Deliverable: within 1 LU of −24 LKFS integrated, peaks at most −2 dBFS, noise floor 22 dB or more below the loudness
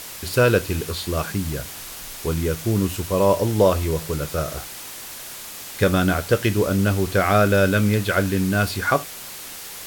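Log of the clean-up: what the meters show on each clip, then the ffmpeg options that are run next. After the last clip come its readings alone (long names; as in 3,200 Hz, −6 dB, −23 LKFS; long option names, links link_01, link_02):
background noise floor −36 dBFS; target noise floor −43 dBFS; integrated loudness −21.0 LKFS; sample peak −5.0 dBFS; target loudness −24.0 LKFS
→ -af "afftdn=noise_reduction=7:noise_floor=-36"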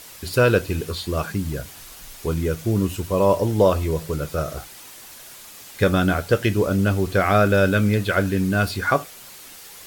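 background noise floor −42 dBFS; target noise floor −43 dBFS
→ -af "afftdn=noise_reduction=6:noise_floor=-42"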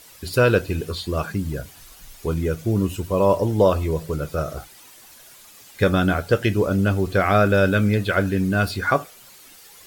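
background noise floor −47 dBFS; integrated loudness −21.5 LKFS; sample peak −5.5 dBFS; target loudness −24.0 LKFS
→ -af "volume=-2.5dB"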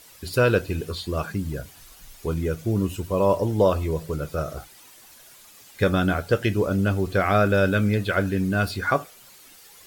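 integrated loudness −24.0 LKFS; sample peak −8.0 dBFS; background noise floor −50 dBFS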